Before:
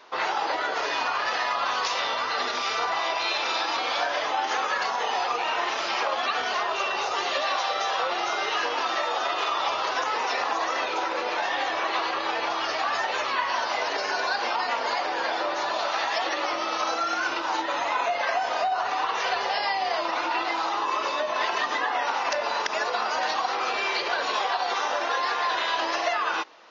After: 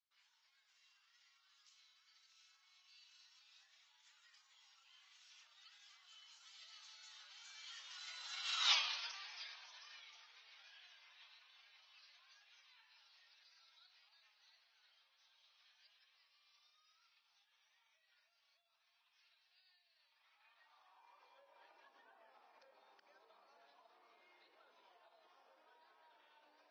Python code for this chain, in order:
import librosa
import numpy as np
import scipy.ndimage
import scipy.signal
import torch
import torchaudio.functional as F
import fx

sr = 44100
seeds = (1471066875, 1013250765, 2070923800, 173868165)

y = fx.doppler_pass(x, sr, speed_mps=34, closest_m=2.3, pass_at_s=8.72)
y = fx.filter_sweep_highpass(y, sr, from_hz=3200.0, to_hz=160.0, start_s=19.93, end_s=22.31, q=0.81)
y = y * 10.0 ** (3.5 / 20.0)